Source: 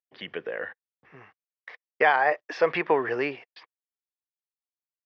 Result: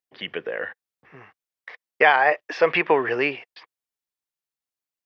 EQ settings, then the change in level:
dynamic equaliser 2,700 Hz, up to +6 dB, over −43 dBFS, Q 2
+3.5 dB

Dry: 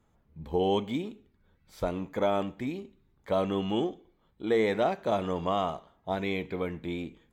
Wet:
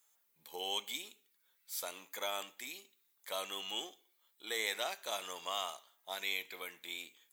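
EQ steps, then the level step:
high-pass filter 450 Hz 6 dB per octave
first difference
high-shelf EQ 5,200 Hz +7.5 dB
+8.0 dB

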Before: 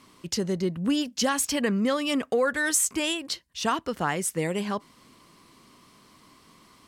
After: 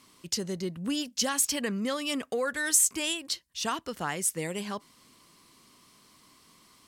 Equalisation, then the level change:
high-shelf EQ 3,200 Hz +9 dB
−6.5 dB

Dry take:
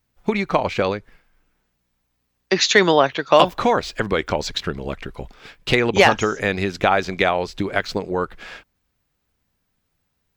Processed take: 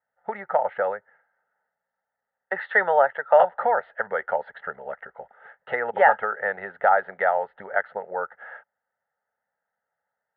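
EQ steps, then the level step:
high-frequency loss of the air 440 metres
loudspeaker in its box 460–2,100 Hz, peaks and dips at 540 Hz +4 dB, 880 Hz +9 dB, 1,300 Hz +6 dB, 1,900 Hz +7 dB
phaser with its sweep stopped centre 1,600 Hz, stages 8
−2.0 dB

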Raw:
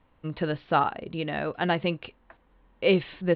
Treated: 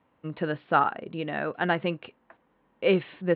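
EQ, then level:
high-pass filter 150 Hz 12 dB per octave
dynamic equaliser 1,500 Hz, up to +6 dB, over −40 dBFS, Q 2.3
high-frequency loss of the air 230 metres
0.0 dB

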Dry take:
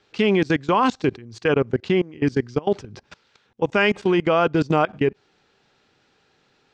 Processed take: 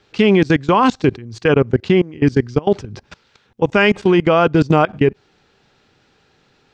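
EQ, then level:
low-shelf EQ 160 Hz +7 dB
+4.5 dB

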